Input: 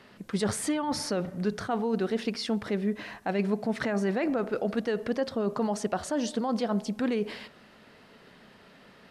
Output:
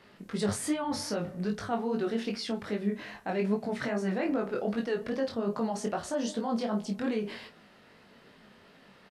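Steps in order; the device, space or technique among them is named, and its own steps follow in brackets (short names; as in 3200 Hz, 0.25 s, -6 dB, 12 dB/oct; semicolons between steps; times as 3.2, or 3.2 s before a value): double-tracked vocal (doubler 30 ms -9 dB; chorus 2.5 Hz, delay 18 ms, depth 4.1 ms)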